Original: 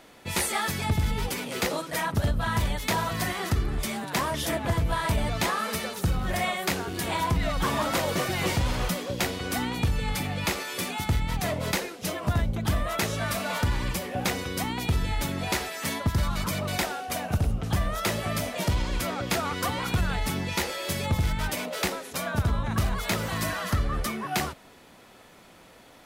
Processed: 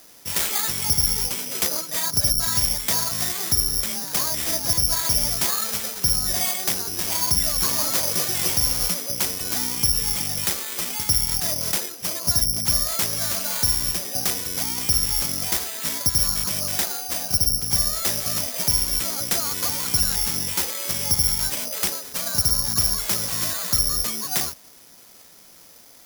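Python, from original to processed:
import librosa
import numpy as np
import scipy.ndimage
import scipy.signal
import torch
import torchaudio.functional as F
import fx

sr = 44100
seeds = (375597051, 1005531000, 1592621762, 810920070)

y = (np.kron(x[::8], np.eye(8)[0]) * 8)[:len(x)]
y = F.gain(torch.from_numpy(y), -5.0).numpy()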